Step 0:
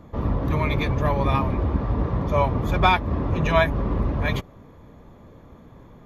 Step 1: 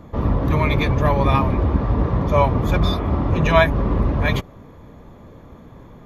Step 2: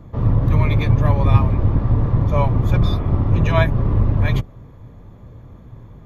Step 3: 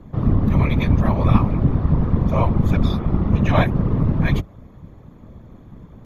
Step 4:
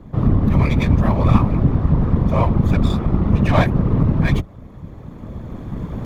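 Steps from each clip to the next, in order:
healed spectral selection 0:02.85–0:03.22, 280–3,500 Hz both; level +4.5 dB
sub-octave generator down 2 octaves, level +3 dB; parametric band 110 Hz +12 dB 0.71 octaves; level −5 dB
random phases in short frames; level −1 dB
camcorder AGC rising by 8.6 dB per second; windowed peak hold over 3 samples; level +1.5 dB

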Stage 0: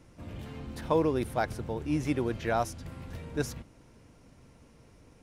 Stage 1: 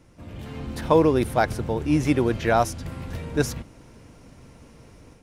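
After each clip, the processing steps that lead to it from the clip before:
automatic gain control gain up to 7 dB
level +1.5 dB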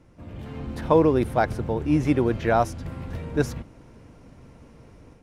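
high-shelf EQ 2,900 Hz −9 dB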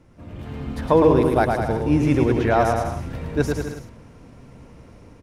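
bouncing-ball delay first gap 110 ms, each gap 0.8×, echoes 5
level +1.5 dB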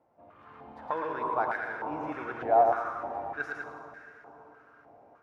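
dense smooth reverb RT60 4.2 s, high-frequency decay 0.6×, DRR 5 dB
band-pass on a step sequencer 3.3 Hz 740–1,700 Hz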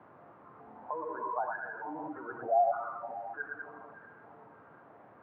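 gate on every frequency bin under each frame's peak −10 dB strong
hum removal 90.72 Hz, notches 39
noise in a band 100–1,300 Hz −54 dBFS
level −3.5 dB

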